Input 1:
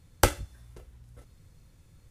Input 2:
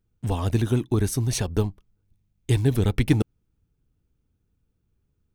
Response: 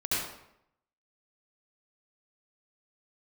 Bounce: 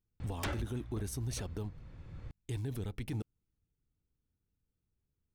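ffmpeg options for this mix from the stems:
-filter_complex "[0:a]lowpass=2400,aeval=exprs='0.335*sin(PI/2*6.31*val(0)/0.335)':c=same,adelay=200,volume=0.631[s0];[1:a]volume=0.237,asplit=2[s1][s2];[s2]apad=whole_len=101853[s3];[s0][s3]sidechaincompress=threshold=0.0112:ratio=10:attack=12:release=1370[s4];[s4][s1]amix=inputs=2:normalize=0,alimiter=level_in=1.68:limit=0.0631:level=0:latency=1:release=33,volume=0.596"

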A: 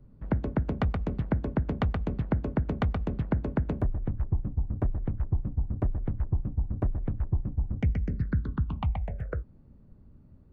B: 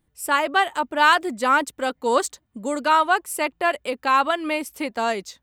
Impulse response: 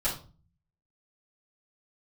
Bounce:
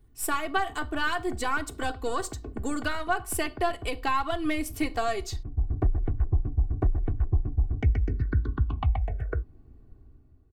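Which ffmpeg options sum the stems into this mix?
-filter_complex "[0:a]dynaudnorm=f=140:g=9:m=2.66,volume=0.398[s0];[1:a]aeval=exprs='if(lt(val(0),0),0.708*val(0),val(0))':c=same,acompressor=threshold=0.0447:ratio=6,volume=0.891,asplit=3[s1][s2][s3];[s2]volume=0.126[s4];[s3]apad=whole_len=463957[s5];[s0][s5]sidechaincompress=threshold=0.00447:ratio=8:attack=47:release=426[s6];[2:a]atrim=start_sample=2205[s7];[s4][s7]afir=irnorm=-1:irlink=0[s8];[s6][s1][s8]amix=inputs=3:normalize=0,aecho=1:1:2.7:0.78"

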